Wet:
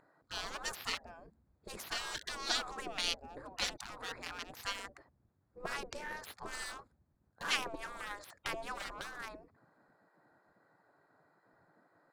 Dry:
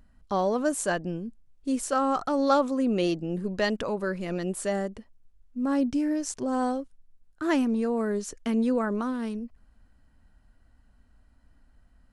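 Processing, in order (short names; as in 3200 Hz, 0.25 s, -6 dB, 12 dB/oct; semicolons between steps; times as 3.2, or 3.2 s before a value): Wiener smoothing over 15 samples; spectral gate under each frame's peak -25 dB weak; gain +8 dB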